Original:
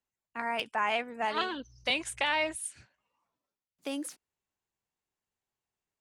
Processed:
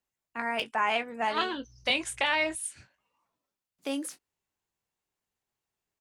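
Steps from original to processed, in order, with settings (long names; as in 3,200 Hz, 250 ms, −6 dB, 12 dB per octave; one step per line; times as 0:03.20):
double-tracking delay 22 ms −11 dB
level +2 dB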